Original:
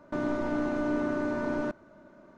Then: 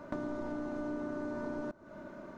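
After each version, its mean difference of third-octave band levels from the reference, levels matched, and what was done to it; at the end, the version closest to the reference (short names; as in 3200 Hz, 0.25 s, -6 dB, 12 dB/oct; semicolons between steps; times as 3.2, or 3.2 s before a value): 4.0 dB: dynamic EQ 2400 Hz, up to -6 dB, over -53 dBFS, Q 1.1; compressor 6:1, threshold -43 dBFS, peak gain reduction 16 dB; gain +6.5 dB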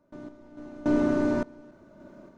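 8.0 dB: bell 1400 Hz -7 dB 2.2 oct; random-step tremolo 3.5 Hz, depth 95%; gain +7.5 dB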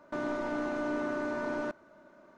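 2.5 dB: low shelf 280 Hz -11 dB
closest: third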